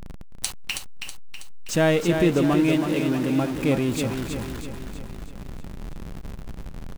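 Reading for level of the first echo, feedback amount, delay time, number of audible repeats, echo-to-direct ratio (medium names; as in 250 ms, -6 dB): -6.5 dB, 51%, 323 ms, 5, -5.0 dB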